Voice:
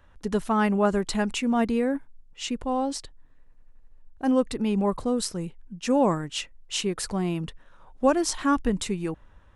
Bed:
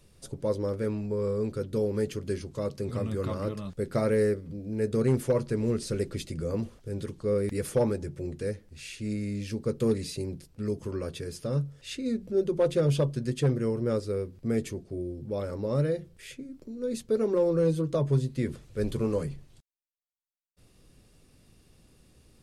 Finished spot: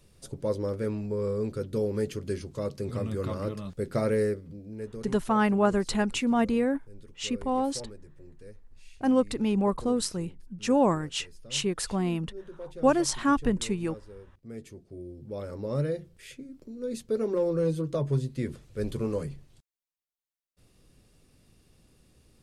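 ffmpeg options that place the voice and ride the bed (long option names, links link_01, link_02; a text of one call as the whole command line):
ffmpeg -i stem1.wav -i stem2.wav -filter_complex "[0:a]adelay=4800,volume=-1dB[link_01];[1:a]volume=14.5dB,afade=type=out:start_time=4.09:duration=0.98:silence=0.149624,afade=type=in:start_time=14.4:duration=1.4:silence=0.177828[link_02];[link_01][link_02]amix=inputs=2:normalize=0" out.wav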